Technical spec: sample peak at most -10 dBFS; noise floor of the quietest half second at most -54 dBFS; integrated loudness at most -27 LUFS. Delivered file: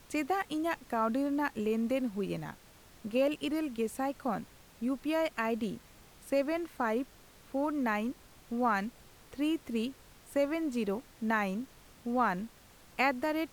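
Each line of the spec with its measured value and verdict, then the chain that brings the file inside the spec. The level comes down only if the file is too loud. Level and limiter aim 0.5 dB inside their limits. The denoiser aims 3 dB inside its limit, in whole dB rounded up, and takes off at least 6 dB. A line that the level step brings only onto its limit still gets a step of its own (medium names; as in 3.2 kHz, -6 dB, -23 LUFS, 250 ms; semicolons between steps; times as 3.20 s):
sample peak -17.0 dBFS: pass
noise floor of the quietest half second -57 dBFS: pass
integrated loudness -33.5 LUFS: pass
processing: none needed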